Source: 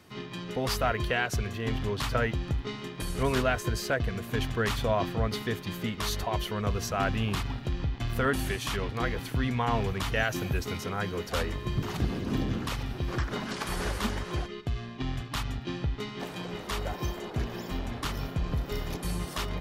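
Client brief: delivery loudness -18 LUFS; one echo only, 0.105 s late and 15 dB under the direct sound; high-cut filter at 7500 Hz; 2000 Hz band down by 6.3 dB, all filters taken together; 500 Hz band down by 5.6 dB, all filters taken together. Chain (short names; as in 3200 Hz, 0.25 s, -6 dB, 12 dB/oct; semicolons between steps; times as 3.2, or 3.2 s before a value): LPF 7500 Hz; bell 500 Hz -7 dB; bell 2000 Hz -8 dB; echo 0.105 s -15 dB; gain +15.5 dB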